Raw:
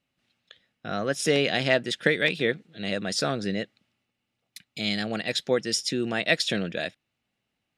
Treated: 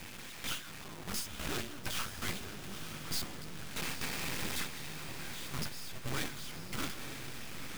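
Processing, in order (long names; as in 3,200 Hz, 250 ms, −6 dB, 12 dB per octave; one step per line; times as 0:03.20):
sign of each sample alone
mains-hum notches 60/120/180/240/300/360/420/480/540 Hz
noise gate with hold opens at −24 dBFS
downward compressor, threshold −35 dBFS, peak gain reduction 7.5 dB
brickwall limiter −35.5 dBFS, peak gain reduction 10 dB
frequency shifter −360 Hz
half-wave rectification
feedback delay with all-pass diffusion 938 ms, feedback 52%, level −8.5 dB
level +7 dB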